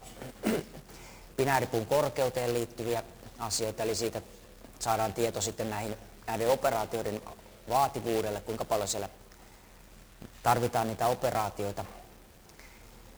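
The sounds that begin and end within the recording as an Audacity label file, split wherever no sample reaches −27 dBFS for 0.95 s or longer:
10.460000	11.810000	sound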